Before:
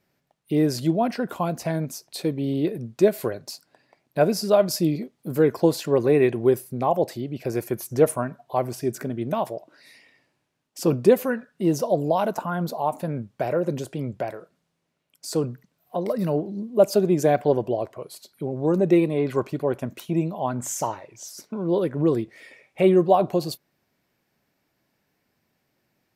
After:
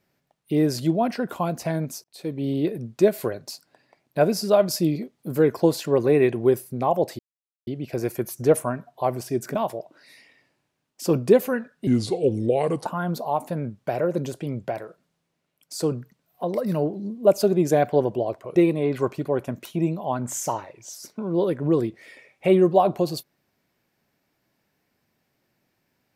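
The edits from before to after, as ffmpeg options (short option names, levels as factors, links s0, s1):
-filter_complex "[0:a]asplit=7[s0][s1][s2][s3][s4][s5][s6];[s0]atrim=end=2.04,asetpts=PTS-STARTPTS,afade=t=out:st=2.036:d=0.004:c=hsin[s7];[s1]atrim=start=2.04:end=7.19,asetpts=PTS-STARTPTS,afade=t=in:d=0.42,afade=t=out:st=5.146:d=0.004:c=hsin,apad=pad_dur=0.48[s8];[s2]atrim=start=7.19:end=9.072,asetpts=PTS-STARTPTS,afade=t=in:d=0.004:c=hsin[s9];[s3]atrim=start=9.318:end=11.644[s10];[s4]atrim=start=11.64:end=12.38,asetpts=PTS-STARTPTS,asetrate=33075,aresample=44100[s11];[s5]atrim=start=12.376:end=18.082[s12];[s6]atrim=start=18.898[s13];[s7][s8][s9]concat=n=3:v=0:a=1[s14];[s14][s10]acrossfade=d=0.004:c1=hsin:c2=hsin[s15];[s15][s11]acrossfade=d=0.004:c1=hsin:c2=hsin[s16];[s16][s12]acrossfade=d=0.004:c1=hsin:c2=hsin[s17];[s17][s13]acrossfade=d=0.004:c1=hsin:c2=hsin"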